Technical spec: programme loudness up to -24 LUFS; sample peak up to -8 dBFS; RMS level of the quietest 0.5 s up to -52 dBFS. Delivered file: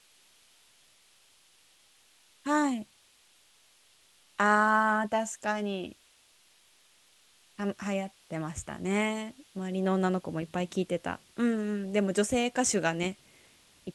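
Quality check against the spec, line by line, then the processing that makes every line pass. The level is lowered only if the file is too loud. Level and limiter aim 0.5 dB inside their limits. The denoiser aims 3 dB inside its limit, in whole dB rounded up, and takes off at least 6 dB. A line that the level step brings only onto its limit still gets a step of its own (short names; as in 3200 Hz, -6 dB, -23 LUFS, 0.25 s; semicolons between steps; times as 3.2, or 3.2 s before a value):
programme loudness -30.0 LUFS: OK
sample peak -11.5 dBFS: OK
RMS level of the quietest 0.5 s -63 dBFS: OK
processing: none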